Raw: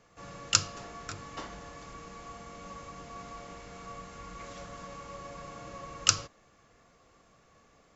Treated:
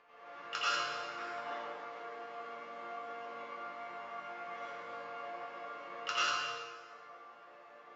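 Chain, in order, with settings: high-pass 750 Hz 12 dB/octave; treble shelf 2.4 kHz -9 dB; upward compressor, threshold -54 dBFS; distance through air 260 m; chord resonator A#2 major, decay 0.46 s; reverberation RT60 1.6 s, pre-delay 77 ms, DRR -10 dB; trim +14.5 dB

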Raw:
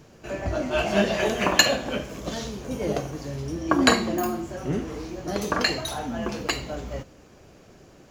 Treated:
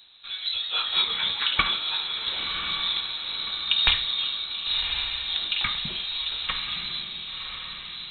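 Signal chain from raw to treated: echo that smears into a reverb 1081 ms, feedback 52%, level -5.5 dB; frequency inversion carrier 4 kHz; trim -3 dB

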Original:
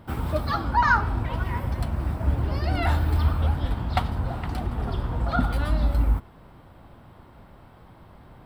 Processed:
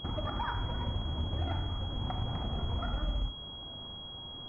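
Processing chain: compression, threshold -31 dBFS, peak gain reduction 15 dB; granular stretch 0.53×, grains 37 ms; Schroeder reverb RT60 0.73 s, combs from 26 ms, DRR 4.5 dB; class-D stage that switches slowly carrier 3.3 kHz

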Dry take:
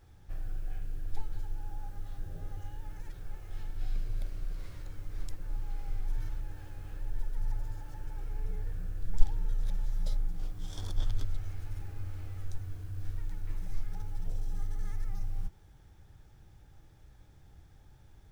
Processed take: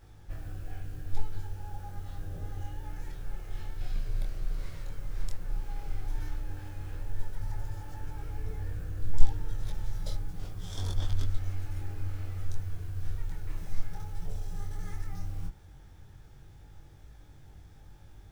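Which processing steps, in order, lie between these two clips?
chorus 0.11 Hz, delay 20 ms, depth 5.2 ms; trim +7.5 dB

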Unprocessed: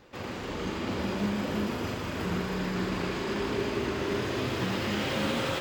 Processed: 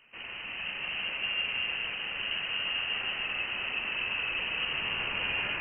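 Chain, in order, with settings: on a send: echo whose repeats swap between lows and highs 156 ms, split 1.8 kHz, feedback 76%, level -3 dB; on the sum: frequency inversion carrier 3 kHz; trim -5 dB

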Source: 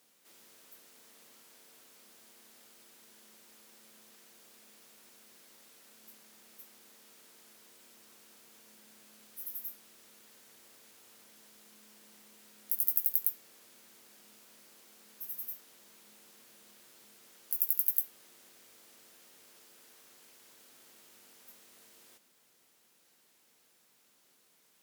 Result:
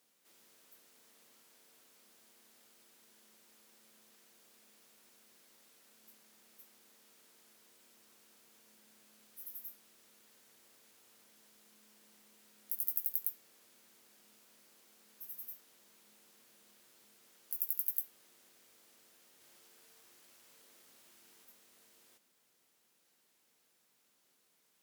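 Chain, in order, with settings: 19.21–21.45 s: chunks repeated in reverse 202 ms, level -2 dB; trim -6 dB

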